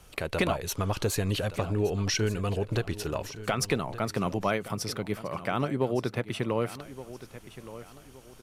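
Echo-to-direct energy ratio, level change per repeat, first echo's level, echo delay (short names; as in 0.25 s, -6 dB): -14.5 dB, -9.5 dB, -15.0 dB, 1.17 s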